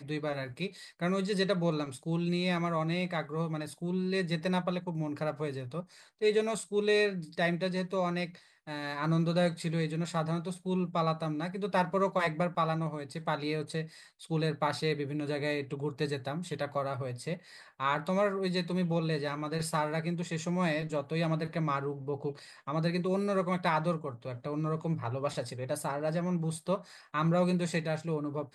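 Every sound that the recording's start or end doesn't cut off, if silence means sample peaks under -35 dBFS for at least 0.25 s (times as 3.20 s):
1.02–5.80 s
6.22–8.26 s
8.68–13.83 s
14.31–17.35 s
17.80–22.31 s
22.68–26.77 s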